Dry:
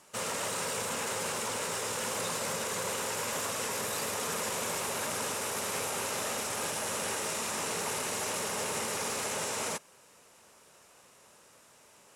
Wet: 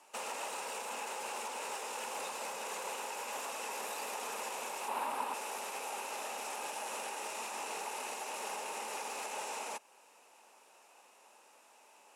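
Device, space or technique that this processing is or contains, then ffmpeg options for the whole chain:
laptop speaker: -filter_complex "[0:a]highpass=frequency=250:width=0.5412,highpass=frequency=250:width=1.3066,equalizer=frequency=830:width_type=o:width=0.51:gain=11.5,equalizer=frequency=2600:width_type=o:width=0.23:gain=9,alimiter=level_in=0.5dB:limit=-24dB:level=0:latency=1:release=347,volume=-0.5dB,asettb=1/sr,asplit=3[link_01][link_02][link_03];[link_01]atrim=end=4.884[link_04];[link_02]atrim=start=4.88:end=5.34,asetpts=PTS-STARTPTS,afade=type=in:duration=0.004:curve=qsin,afade=type=out:start_time=0.456:duration=0.004:curve=qsin,equalizer=frequency=250:width_type=o:width=0.67:gain=7,equalizer=frequency=1000:width_type=o:width=0.67:gain=9,equalizer=frequency=6300:width_type=o:width=0.67:gain=-9[link_05];[link_03]atrim=start=5.336[link_06];[link_04][link_05]acrossfade=duration=0.004:curve1=hsin:curve2=qsin[link_07];[link_07][link_06]acrossfade=duration=0.004:curve1=qsin:curve2=hsin,volume=-6dB"

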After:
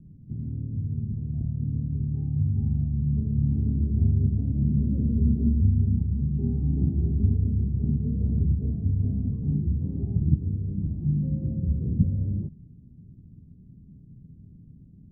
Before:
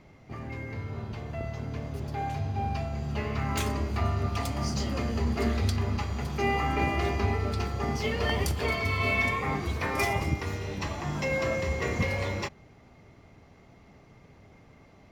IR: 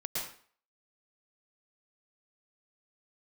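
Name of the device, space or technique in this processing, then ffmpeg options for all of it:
the neighbour's flat through the wall: -filter_complex "[0:a]asettb=1/sr,asplit=3[link_01][link_02][link_03];[link_01]atrim=end=3.854[link_04];[link_02]atrim=start=3.85:end=5.37,asetpts=PTS-STARTPTS,afade=type=in:duration=0.004:curve=qsin,afade=type=out:start_time=1.516:duration=0.004:curve=qsin,equalizer=frequency=500:width_type=o:width=1:gain=8,equalizer=frequency=1000:width_type=o:width=1:gain=-7,equalizer=frequency=2000:width_type=o:width=1:gain=9[link_05];[link_03]atrim=start=5.366[link_06];[link_04][link_05]acrossfade=duration=0.004:curve1=hsin:curve2=qsin[link_07];[link_07][link_06]acrossfade=duration=0.004:curve1=qsin:curve2=hsin,lowpass=frequency=240:width=0.5412,lowpass=frequency=240:width=1.3066,equalizer=frequency=160:width_type=o:width=0.67:gain=5,volume=6dB"

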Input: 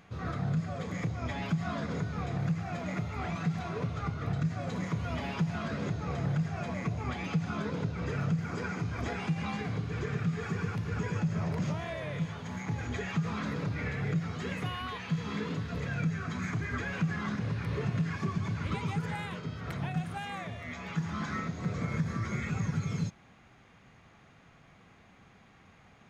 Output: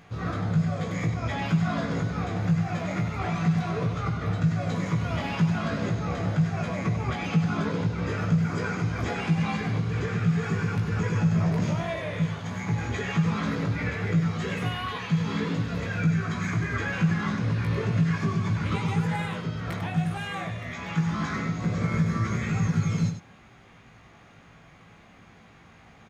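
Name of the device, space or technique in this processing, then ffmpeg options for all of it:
slapback doubling: -filter_complex "[0:a]asplit=3[link_01][link_02][link_03];[link_02]adelay=18,volume=-4dB[link_04];[link_03]adelay=97,volume=-7.5dB[link_05];[link_01][link_04][link_05]amix=inputs=3:normalize=0,volume=4dB"

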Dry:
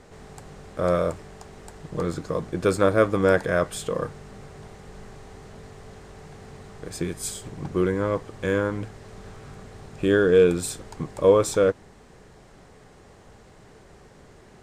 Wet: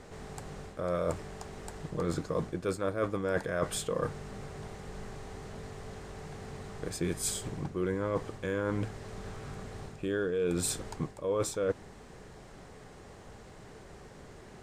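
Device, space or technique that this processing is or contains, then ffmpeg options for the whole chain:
compression on the reversed sound: -af "areverse,acompressor=threshold=-27dB:ratio=16,areverse"

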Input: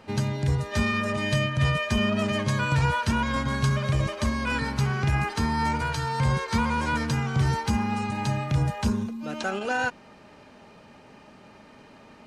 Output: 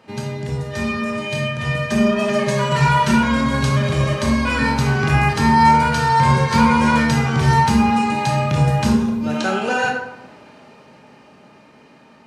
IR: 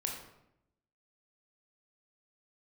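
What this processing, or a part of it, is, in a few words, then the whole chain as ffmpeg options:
far laptop microphone: -filter_complex "[0:a]asettb=1/sr,asplit=3[link_01][link_02][link_03];[link_01]atrim=end=1.904[link_04];[link_02]atrim=start=1.9:end=3.15,asetpts=PTS-STARTPTS,afade=type=in:duration=0.004:curve=qsin,afade=type=out:start_time=1.246:duration=0.004:curve=qsin,aecho=1:1:5.1:0.97,atrim=end_sample=55125[link_05];[link_03]atrim=start=3.146[link_06];[link_04][link_05]acrossfade=duration=0.004:curve1=hsin:curve2=qsin[link_07];[link_07][link_06]acrossfade=duration=0.004:curve1=qsin:curve2=hsin[link_08];[1:a]atrim=start_sample=2205[link_09];[link_08][link_09]afir=irnorm=-1:irlink=0,highpass=110,dynaudnorm=framelen=480:gausssize=11:maxgain=10dB"

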